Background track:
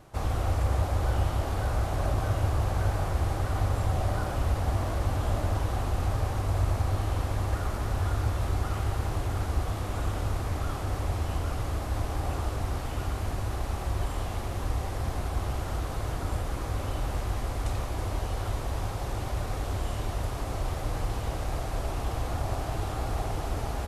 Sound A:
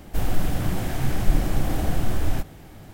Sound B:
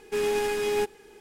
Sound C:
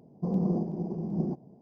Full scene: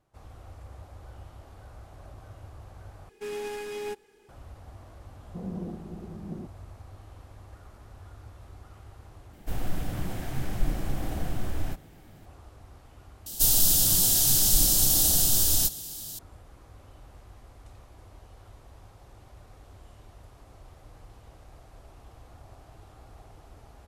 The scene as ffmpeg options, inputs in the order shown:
-filter_complex "[1:a]asplit=2[s0][s1];[0:a]volume=0.106[s2];[s1]aexciter=amount=15.4:drive=7.1:freq=3400[s3];[s2]asplit=4[s4][s5][s6][s7];[s4]atrim=end=3.094[s8];[2:a]atrim=end=1.2,asetpts=PTS-STARTPTS,volume=0.355[s9];[s5]atrim=start=4.286:end=9.334[s10];[s0]atrim=end=2.93,asetpts=PTS-STARTPTS,volume=0.422[s11];[s6]atrim=start=12.256:end=13.264[s12];[s3]atrim=end=2.93,asetpts=PTS-STARTPTS,volume=0.422[s13];[s7]atrim=start=16.186[s14];[3:a]atrim=end=1.61,asetpts=PTS-STARTPTS,volume=0.376,afade=t=in:d=0.004:c=hsin,afade=t=out:st=1.606:d=0.004:c=hsin,adelay=5120[s15];[s8][s9]acrossfade=d=0.004:c1=hsin:c2=hsin[s16];[s16][s10]acrossfade=d=0.004:c1=hsin:c2=hsin[s17];[s17][s11]acrossfade=d=0.004:c1=hsin:c2=hsin[s18];[s18][s12]acrossfade=d=0.004:c1=hsin:c2=hsin[s19];[s19][s13]acrossfade=d=0.004:c1=hsin:c2=hsin[s20];[s20][s14]acrossfade=d=0.004:c1=hsin:c2=hsin[s21];[s21][s15]amix=inputs=2:normalize=0"

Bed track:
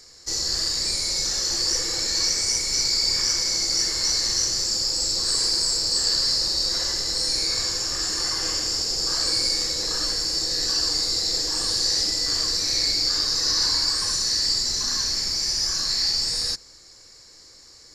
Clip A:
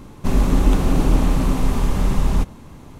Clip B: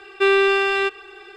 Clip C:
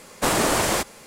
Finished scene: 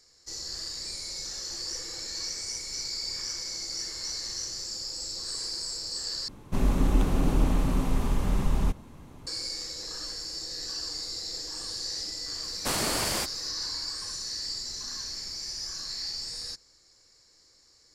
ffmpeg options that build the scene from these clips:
-filter_complex "[0:a]volume=0.251[s0];[3:a]equalizer=f=590:w=0.3:g=-6[s1];[s0]asplit=2[s2][s3];[s2]atrim=end=6.284[s4];[1:a]atrim=end=2.99,asetpts=PTS-STARTPTS,volume=0.422[s5];[s3]atrim=start=9.266[s6];[s1]atrim=end=1.06,asetpts=PTS-STARTPTS,volume=0.562,afade=t=in:d=0.004:c=hsin,afade=t=out:st=1.056:d=0.004:c=hsin,adelay=12430[s7];[s4][s5]acrossfade=d=0.004:c1=hsin:c2=hsin[s8];[s8][s6]acrossfade=d=0.004:c1=hsin:c2=hsin[s9];[s9][s7]amix=inputs=2:normalize=0"

